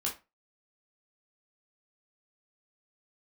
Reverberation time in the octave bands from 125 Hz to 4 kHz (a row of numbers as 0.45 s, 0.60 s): 0.25 s, 0.25 s, 0.25 s, 0.25 s, 0.25 s, 0.20 s